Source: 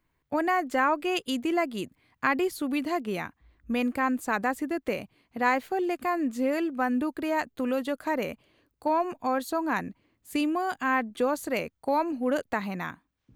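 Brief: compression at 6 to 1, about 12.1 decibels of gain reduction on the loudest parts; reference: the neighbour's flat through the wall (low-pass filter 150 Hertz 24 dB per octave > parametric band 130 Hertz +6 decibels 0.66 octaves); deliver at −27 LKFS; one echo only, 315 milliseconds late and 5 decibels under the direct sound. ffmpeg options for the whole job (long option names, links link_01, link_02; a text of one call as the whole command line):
ffmpeg -i in.wav -af "acompressor=threshold=-33dB:ratio=6,lowpass=frequency=150:width=0.5412,lowpass=frequency=150:width=1.3066,equalizer=frequency=130:width_type=o:width=0.66:gain=6,aecho=1:1:315:0.562,volume=29dB" out.wav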